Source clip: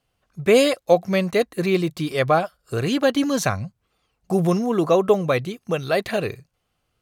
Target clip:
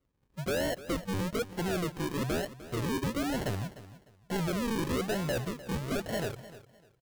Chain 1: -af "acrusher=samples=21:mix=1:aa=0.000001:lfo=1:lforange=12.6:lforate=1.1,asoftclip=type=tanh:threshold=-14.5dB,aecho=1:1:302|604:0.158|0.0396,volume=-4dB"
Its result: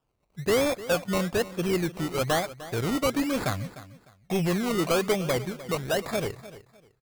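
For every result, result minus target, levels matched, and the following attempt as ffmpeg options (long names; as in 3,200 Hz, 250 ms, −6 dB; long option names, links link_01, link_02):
sample-and-hold swept by an LFO: distortion −14 dB; soft clipping: distortion −7 dB
-af "acrusher=samples=51:mix=1:aa=0.000001:lfo=1:lforange=30.6:lforate=1.1,asoftclip=type=tanh:threshold=-14.5dB,aecho=1:1:302|604:0.158|0.0396,volume=-4dB"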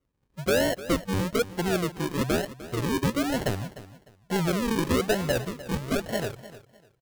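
soft clipping: distortion −7 dB
-af "acrusher=samples=51:mix=1:aa=0.000001:lfo=1:lforange=30.6:lforate=1.1,asoftclip=type=tanh:threshold=-24.5dB,aecho=1:1:302|604:0.158|0.0396,volume=-4dB"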